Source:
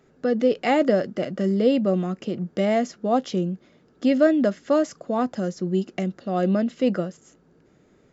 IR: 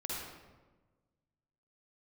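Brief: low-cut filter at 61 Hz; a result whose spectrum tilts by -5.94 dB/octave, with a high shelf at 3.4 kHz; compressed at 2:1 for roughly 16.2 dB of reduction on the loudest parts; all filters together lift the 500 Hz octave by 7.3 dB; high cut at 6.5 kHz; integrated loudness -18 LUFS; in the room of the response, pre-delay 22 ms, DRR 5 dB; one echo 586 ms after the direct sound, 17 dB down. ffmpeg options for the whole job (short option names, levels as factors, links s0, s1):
-filter_complex "[0:a]highpass=61,lowpass=6500,equalizer=f=500:t=o:g=9,highshelf=f=3400:g=-6.5,acompressor=threshold=0.0126:ratio=2,aecho=1:1:586:0.141,asplit=2[s0][s1];[1:a]atrim=start_sample=2205,adelay=22[s2];[s1][s2]afir=irnorm=-1:irlink=0,volume=0.422[s3];[s0][s3]amix=inputs=2:normalize=0,volume=4.22"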